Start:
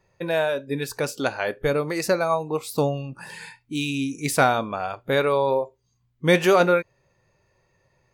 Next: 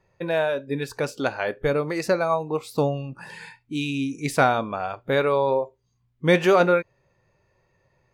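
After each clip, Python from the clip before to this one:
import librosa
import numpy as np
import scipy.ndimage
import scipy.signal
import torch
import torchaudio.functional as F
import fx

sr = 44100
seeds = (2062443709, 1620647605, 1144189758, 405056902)

y = fx.lowpass(x, sr, hz=3800.0, slope=6)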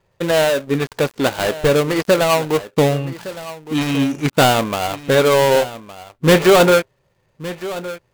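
y = fx.dead_time(x, sr, dead_ms=0.22)
y = fx.leveller(y, sr, passes=1)
y = y + 10.0 ** (-15.5 / 20.0) * np.pad(y, (int(1163 * sr / 1000.0), 0))[:len(y)]
y = y * 10.0 ** (5.0 / 20.0)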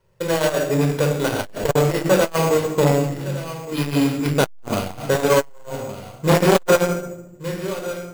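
y = fx.room_shoebox(x, sr, seeds[0], volume_m3=2500.0, walls='furnished', distance_m=4.9)
y = np.repeat(y[::6], 6)[:len(y)]
y = fx.transformer_sat(y, sr, knee_hz=620.0)
y = y * 10.0 ** (-5.5 / 20.0)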